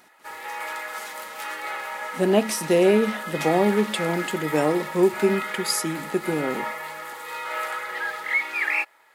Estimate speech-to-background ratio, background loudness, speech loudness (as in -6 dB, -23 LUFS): 7.0 dB, -30.0 LUFS, -23.0 LUFS